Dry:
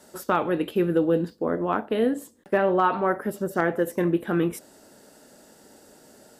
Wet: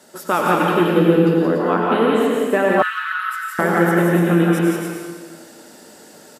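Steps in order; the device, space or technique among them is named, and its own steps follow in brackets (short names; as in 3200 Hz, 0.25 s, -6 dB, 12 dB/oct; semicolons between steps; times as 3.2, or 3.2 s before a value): stadium PA (HPF 120 Hz 12 dB/oct; bell 2700 Hz +3.5 dB 2.3 oct; loudspeakers at several distances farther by 60 m -3 dB, 98 m -7 dB; reverb RT60 1.6 s, pre-delay 88 ms, DRR -1 dB); 2.82–3.59 elliptic high-pass 1400 Hz, stop band 50 dB; gain +2.5 dB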